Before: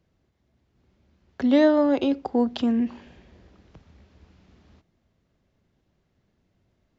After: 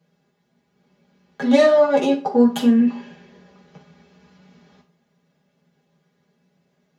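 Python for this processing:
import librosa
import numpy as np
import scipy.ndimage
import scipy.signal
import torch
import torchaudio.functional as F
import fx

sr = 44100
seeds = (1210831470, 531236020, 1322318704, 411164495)

y = fx.tracing_dist(x, sr, depth_ms=0.1)
y = scipy.signal.sosfilt(scipy.signal.butter(2, 170.0, 'highpass', fs=sr, output='sos'), y)
y = y + 0.63 * np.pad(y, (int(4.9 * sr / 1000.0), 0))[:len(y)]
y = fx.rev_fdn(y, sr, rt60_s=0.36, lf_ratio=0.75, hf_ratio=0.8, size_ms=36.0, drr_db=-4.0)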